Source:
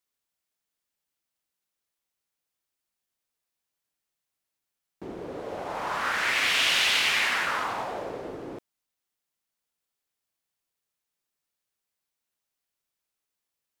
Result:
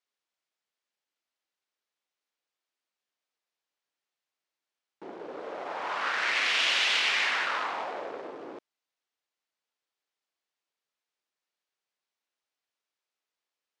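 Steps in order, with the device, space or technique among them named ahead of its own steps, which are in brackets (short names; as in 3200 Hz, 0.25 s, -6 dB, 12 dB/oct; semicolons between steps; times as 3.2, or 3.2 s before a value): public-address speaker with an overloaded transformer (core saturation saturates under 3700 Hz; BPF 320–5200 Hz)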